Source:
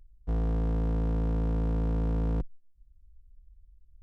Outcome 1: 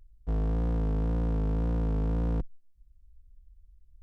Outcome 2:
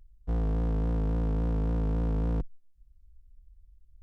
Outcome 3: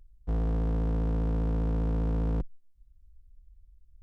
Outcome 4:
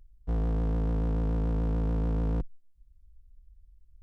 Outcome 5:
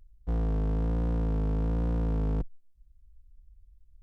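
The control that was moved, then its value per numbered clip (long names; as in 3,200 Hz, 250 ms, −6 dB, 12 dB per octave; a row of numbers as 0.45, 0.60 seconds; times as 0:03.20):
pitch vibrato, speed: 1.9, 3.6, 15, 6.9, 1.2 Hertz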